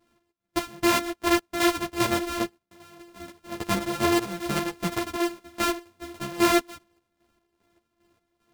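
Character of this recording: a buzz of ramps at a fixed pitch in blocks of 128 samples; chopped level 2.5 Hz, depth 65%, duty 45%; a shimmering, thickened sound

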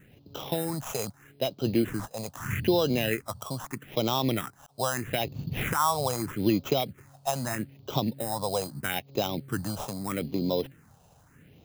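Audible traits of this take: aliases and images of a low sample rate 4500 Hz, jitter 0%; phasing stages 4, 0.79 Hz, lowest notch 310–1800 Hz

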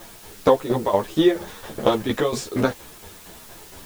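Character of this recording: tremolo saw down 4.3 Hz, depth 75%; a quantiser's noise floor 8-bit, dither triangular; a shimmering, thickened sound

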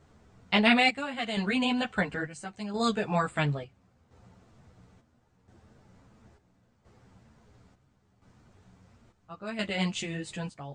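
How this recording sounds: chopped level 0.73 Hz, depth 65%, duty 65%; a shimmering, thickened sound

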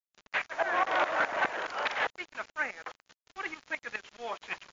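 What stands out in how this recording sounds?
tremolo saw up 4.8 Hz, depth 85%; a quantiser's noise floor 8-bit, dither none; MP3

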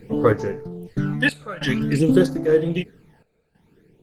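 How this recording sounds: a quantiser's noise floor 12-bit, dither triangular; phasing stages 12, 0.52 Hz, lowest notch 310–3100 Hz; random-step tremolo 3.1 Hz, depth 90%; Opus

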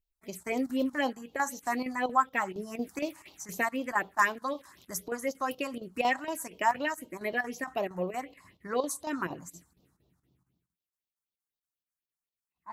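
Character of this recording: phasing stages 4, 4 Hz, lowest notch 420–1800 Hz; chopped level 4.3 Hz, depth 65%, duty 85%

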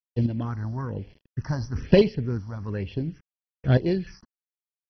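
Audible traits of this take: a quantiser's noise floor 8-bit, dither none; chopped level 0.57 Hz, depth 65%, duty 15%; phasing stages 4, 1.1 Hz, lowest notch 420–1300 Hz; MP2

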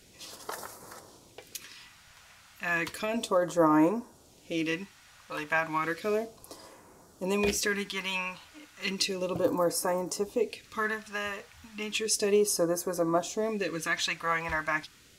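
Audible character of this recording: phasing stages 2, 0.33 Hz, lowest notch 340–2800 Hz

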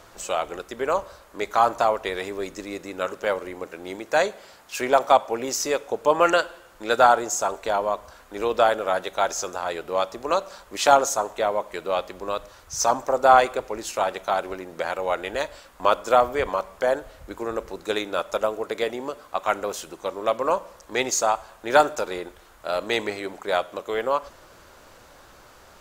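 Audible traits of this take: noise floor -51 dBFS; spectral tilt -2.5 dB/oct

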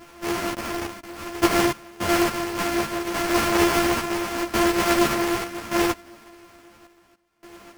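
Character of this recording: a buzz of ramps at a fixed pitch in blocks of 128 samples; random-step tremolo 3.5 Hz, depth 95%; aliases and images of a low sample rate 3800 Hz, jitter 20%; a shimmering, thickened sound

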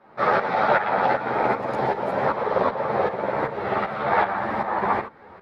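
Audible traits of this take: tremolo saw up 2.6 Hz, depth 75%; a shimmering, thickened sound

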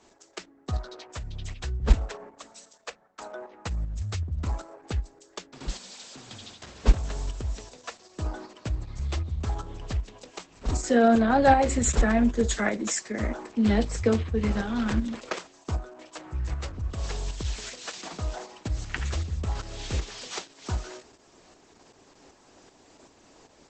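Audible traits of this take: tremolo saw up 2.6 Hz, depth 50%; Opus

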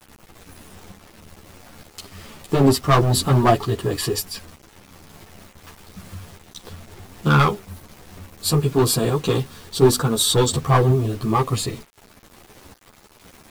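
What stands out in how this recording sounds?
tremolo saw up 1.1 Hz, depth 35%; a quantiser's noise floor 8-bit, dither none; a shimmering, thickened sound

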